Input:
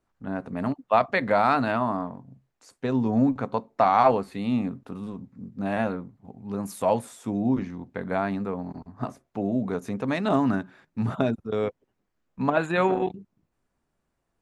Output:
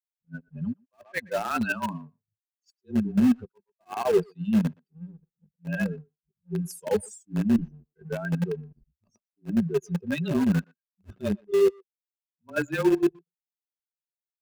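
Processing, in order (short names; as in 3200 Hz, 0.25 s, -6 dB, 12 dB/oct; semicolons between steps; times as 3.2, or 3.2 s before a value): per-bin expansion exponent 3; frequency shift -27 Hz; reverse; compressor 5:1, threshold -42 dBFS, peak gain reduction 21.5 dB; reverse; sample leveller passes 1; in parallel at -6.5 dB: bit-crush 6-bit; on the sum: small resonant body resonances 220/370/1600/2600 Hz, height 10 dB, ringing for 30 ms; speakerphone echo 0.12 s, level -27 dB; attack slew limiter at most 460 dB/s; gain +7 dB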